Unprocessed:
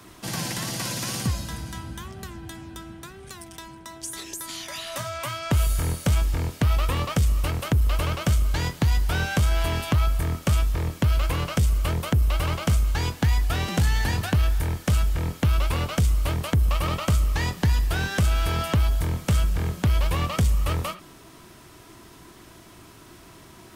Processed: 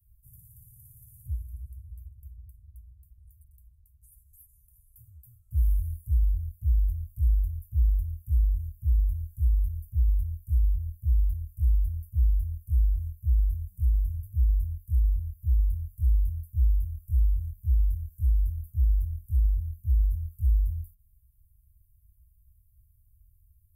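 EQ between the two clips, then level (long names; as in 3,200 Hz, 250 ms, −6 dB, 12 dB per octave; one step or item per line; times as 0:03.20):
inverse Chebyshev band-stop filter 240–4,800 Hz, stop band 60 dB
tilt shelving filter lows +5.5 dB, about 1,300 Hz
−6.0 dB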